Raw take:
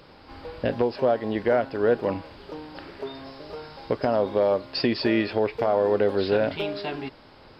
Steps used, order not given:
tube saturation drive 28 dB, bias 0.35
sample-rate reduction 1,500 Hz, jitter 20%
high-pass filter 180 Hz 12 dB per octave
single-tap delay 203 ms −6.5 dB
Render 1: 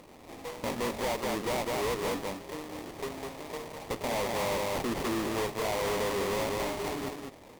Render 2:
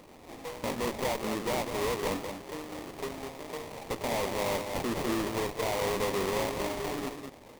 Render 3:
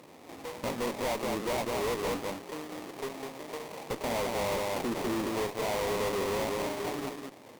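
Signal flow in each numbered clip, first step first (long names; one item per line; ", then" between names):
high-pass filter, then sample-rate reduction, then single-tap delay, then tube saturation
high-pass filter, then tube saturation, then single-tap delay, then sample-rate reduction
single-tap delay, then sample-rate reduction, then high-pass filter, then tube saturation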